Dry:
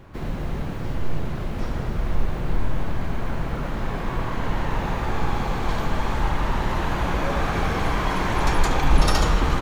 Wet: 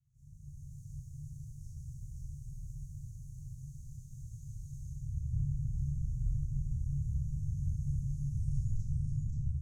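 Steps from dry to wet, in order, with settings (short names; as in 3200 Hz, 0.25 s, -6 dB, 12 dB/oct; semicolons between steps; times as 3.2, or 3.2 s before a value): tape stop at the end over 1.45 s; Chebyshev band-stop 140–6400 Hz, order 5; thin delay 0.529 s, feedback 40%, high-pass 2100 Hz, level -3 dB; Schroeder reverb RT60 0.56 s, combs from 28 ms, DRR -7 dB; band-pass sweep 1000 Hz -> 350 Hz, 4.77–5.37; AGC gain up to 9.5 dB; dynamic EQ 240 Hz, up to -5 dB, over -57 dBFS, Q 1.5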